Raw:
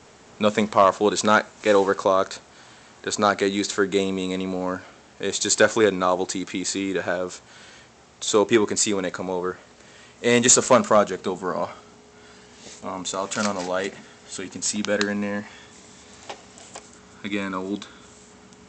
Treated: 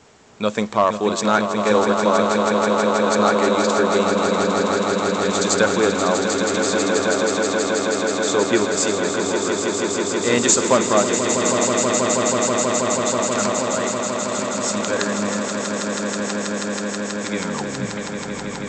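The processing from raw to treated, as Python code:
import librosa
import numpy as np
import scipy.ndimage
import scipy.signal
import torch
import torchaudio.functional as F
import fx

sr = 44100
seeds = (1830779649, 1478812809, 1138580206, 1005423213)

y = fx.tape_stop_end(x, sr, length_s=1.36)
y = fx.echo_swell(y, sr, ms=161, loudest=8, wet_db=-8.0)
y = F.gain(torch.from_numpy(y), -1.0).numpy()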